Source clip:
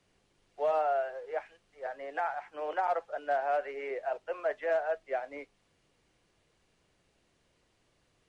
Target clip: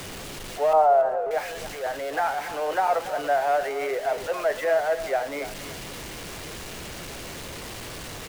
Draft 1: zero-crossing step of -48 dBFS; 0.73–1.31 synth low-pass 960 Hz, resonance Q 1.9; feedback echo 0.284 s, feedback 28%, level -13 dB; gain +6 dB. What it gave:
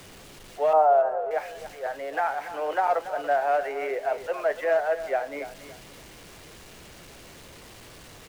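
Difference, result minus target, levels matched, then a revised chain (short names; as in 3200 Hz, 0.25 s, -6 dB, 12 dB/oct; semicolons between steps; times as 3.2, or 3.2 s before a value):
zero-crossing step: distortion -9 dB
zero-crossing step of -37.5 dBFS; 0.73–1.31 synth low-pass 960 Hz, resonance Q 1.9; feedback echo 0.284 s, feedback 28%, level -13 dB; gain +6 dB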